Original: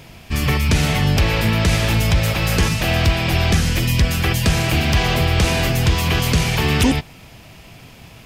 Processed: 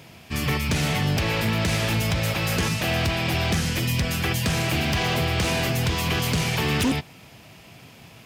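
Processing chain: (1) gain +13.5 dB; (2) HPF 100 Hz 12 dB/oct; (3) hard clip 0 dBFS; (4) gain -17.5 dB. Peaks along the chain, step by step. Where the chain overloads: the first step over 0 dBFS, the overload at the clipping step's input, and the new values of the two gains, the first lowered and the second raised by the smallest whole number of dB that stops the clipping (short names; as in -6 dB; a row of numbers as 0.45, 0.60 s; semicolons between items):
+7.5, +9.0, 0.0, -17.5 dBFS; step 1, 9.0 dB; step 1 +4.5 dB, step 4 -8.5 dB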